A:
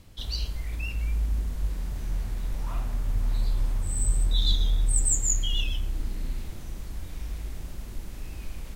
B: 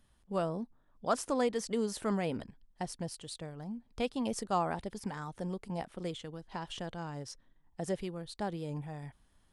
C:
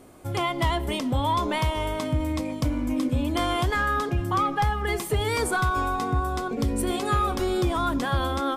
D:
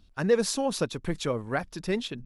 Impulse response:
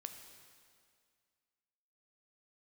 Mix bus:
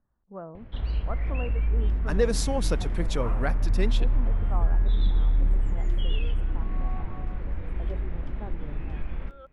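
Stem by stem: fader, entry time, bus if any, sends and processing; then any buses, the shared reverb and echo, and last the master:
+2.5 dB, 0.55 s, send −4.5 dB, low-pass filter 2,200 Hz 24 dB per octave; downward compressor 1.5 to 1, threshold −29 dBFS, peak gain reduction 4.5 dB
−8.0 dB, 0.00 s, send −11 dB, inverse Chebyshev low-pass filter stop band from 3,900 Hz, stop band 50 dB
−10.0 dB, 0.90 s, no send, compressor whose output falls as the input rises −30 dBFS, ratio −1; formant filter swept between two vowels a-i 0.33 Hz
−2.0 dB, 1.90 s, send −20.5 dB, no processing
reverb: on, RT60 2.1 s, pre-delay 6 ms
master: no processing

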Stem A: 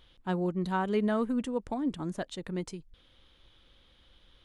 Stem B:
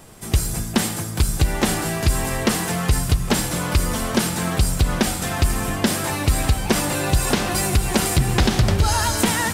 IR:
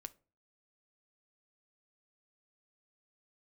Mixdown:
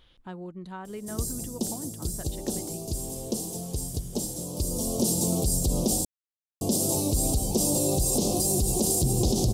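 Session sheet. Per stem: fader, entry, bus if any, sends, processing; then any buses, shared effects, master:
+0.5 dB, 0.00 s, no send, downward compressor 2 to 1, threshold −45 dBFS, peak gain reduction 12 dB
+3.0 dB, 0.85 s, muted 0:06.05–0:06.61, no send, Chebyshev band-stop filter 480–6,000 Hz, order 2; low-shelf EQ 190 Hz −7.5 dB; automatic ducking −10 dB, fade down 1.45 s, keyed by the first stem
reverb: not used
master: brickwall limiter −15 dBFS, peak gain reduction 8 dB

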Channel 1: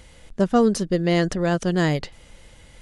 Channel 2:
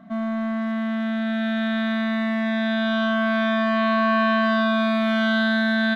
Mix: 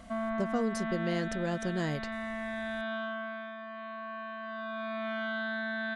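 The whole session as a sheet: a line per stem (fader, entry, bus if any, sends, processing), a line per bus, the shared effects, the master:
−8.0 dB, 0.00 s, no send, no processing
0:01.16 −1 dB → 0:01.45 −9 dB → 0:02.94 −9 dB → 0:03.56 −19.5 dB → 0:04.37 −19.5 dB → 0:05.07 −9.5 dB, 0.00 s, no send, bass and treble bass −13 dB, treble −14 dB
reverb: not used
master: downward compressor 2 to 1, threshold −31 dBFS, peak gain reduction 6.5 dB

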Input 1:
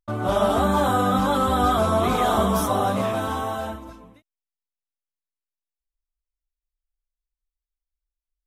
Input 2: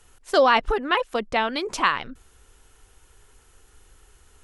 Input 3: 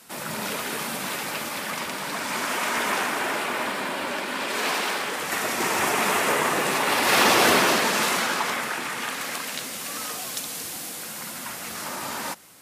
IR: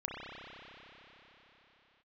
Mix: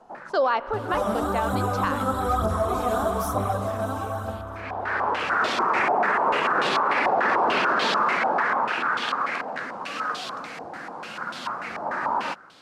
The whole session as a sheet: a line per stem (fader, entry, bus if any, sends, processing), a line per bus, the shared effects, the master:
−9.5 dB, 0.65 s, send −7 dB, phase shifter 1.1 Hz, delay 4.6 ms, feedback 61%
−4.0 dB, 0.00 s, send −16.5 dB, three-way crossover with the lows and the highs turned down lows −15 dB, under 310 Hz, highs −22 dB, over 4,700 Hz
+2.5 dB, 0.00 s, no send, low-shelf EQ 200 Hz −7.5 dB; low-pass on a step sequencer 6.8 Hz 770–3,400 Hz; automatic ducking −23 dB, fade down 0.40 s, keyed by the second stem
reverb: on, pre-delay 30 ms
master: flat-topped bell 2,600 Hz −8 dB 1.2 octaves; brickwall limiter −13.5 dBFS, peak gain reduction 11.5 dB

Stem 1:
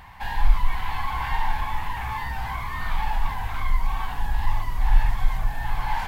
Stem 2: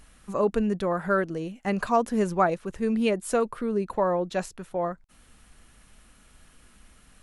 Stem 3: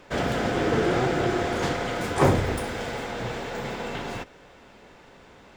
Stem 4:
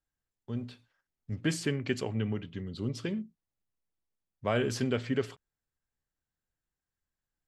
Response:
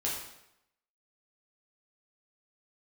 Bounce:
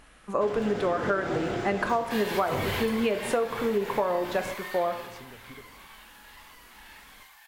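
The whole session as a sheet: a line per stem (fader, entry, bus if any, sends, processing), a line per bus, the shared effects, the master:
0:02.75 −1.5 dB → 0:02.97 −10 dB → 0:04.80 −10 dB → 0:05.24 −19 dB, 1.90 s, send −7.5 dB, high-pass filter 1,400 Hz 12 dB per octave; high-shelf EQ 2,600 Hz +10.5 dB
+2.5 dB, 0.00 s, send −9 dB, bass and treble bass −10 dB, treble −9 dB
−6.5 dB, 0.30 s, no send, mains-hum notches 60/120 Hz
−11.5 dB, 0.40 s, no send, downward compressor, threshold −34 dBFS, peak gain reduction 10.5 dB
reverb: on, RT60 0.80 s, pre-delay 8 ms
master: downward compressor 12 to 1, threshold −22 dBFS, peak gain reduction 12 dB

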